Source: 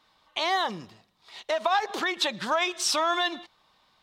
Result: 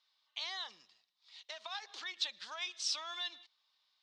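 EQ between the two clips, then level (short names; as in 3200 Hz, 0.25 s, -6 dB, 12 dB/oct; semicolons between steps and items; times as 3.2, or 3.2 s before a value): band-pass 5000 Hz, Q 1.4; air absorption 67 m; -4.5 dB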